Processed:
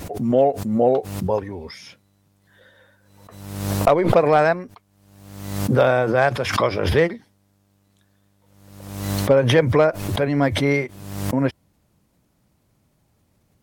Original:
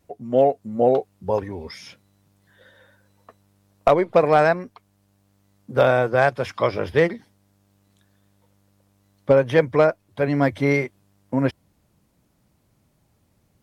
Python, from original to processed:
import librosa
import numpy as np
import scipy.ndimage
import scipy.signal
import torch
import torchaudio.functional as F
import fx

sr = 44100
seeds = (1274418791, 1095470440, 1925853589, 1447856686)

y = fx.pre_swell(x, sr, db_per_s=55.0)